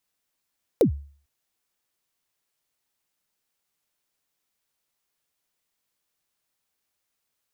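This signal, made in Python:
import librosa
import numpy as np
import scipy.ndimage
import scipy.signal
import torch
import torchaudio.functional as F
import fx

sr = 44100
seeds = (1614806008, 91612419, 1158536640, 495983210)

y = fx.drum_kick(sr, seeds[0], length_s=0.45, level_db=-11.0, start_hz=550.0, end_hz=71.0, sweep_ms=102.0, decay_s=0.45, click=True)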